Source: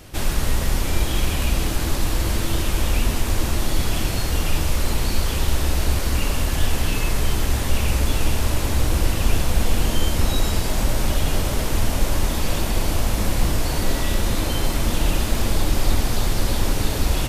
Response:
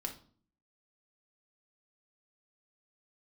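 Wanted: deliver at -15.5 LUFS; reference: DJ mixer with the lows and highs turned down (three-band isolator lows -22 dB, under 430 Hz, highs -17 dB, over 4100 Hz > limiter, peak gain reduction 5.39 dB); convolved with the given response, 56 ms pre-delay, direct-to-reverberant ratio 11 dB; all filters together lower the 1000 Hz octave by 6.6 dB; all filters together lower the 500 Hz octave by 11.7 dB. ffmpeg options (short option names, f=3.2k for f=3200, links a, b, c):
-filter_complex "[0:a]equalizer=f=500:t=o:g=-9,equalizer=f=1k:t=o:g=-5,asplit=2[a][b];[1:a]atrim=start_sample=2205,adelay=56[c];[b][c]afir=irnorm=-1:irlink=0,volume=-10.5dB[d];[a][d]amix=inputs=2:normalize=0,acrossover=split=430 4100:gain=0.0794 1 0.141[e][f][g];[e][f][g]amix=inputs=3:normalize=0,volume=19dB,alimiter=limit=-7dB:level=0:latency=1"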